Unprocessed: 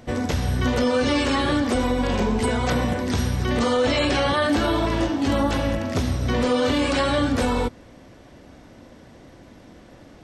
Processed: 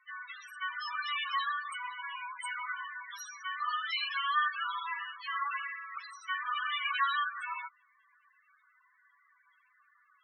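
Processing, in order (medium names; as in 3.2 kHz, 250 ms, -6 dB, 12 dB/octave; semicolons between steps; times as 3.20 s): elliptic high-pass 1.1 kHz, stop band 70 dB; 4.87–7.30 s: dynamic bell 1.8 kHz, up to +4 dB, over -38 dBFS, Q 0.99; loudest bins only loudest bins 8; trim -2 dB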